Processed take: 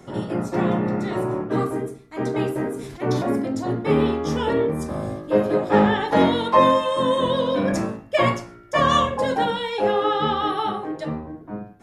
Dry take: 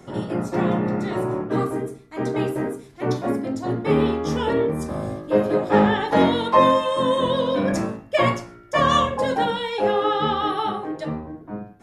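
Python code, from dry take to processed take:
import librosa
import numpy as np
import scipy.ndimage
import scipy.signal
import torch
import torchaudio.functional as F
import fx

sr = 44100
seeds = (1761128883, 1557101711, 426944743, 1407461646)

y = fx.sustainer(x, sr, db_per_s=41.0, at=(2.7, 3.69))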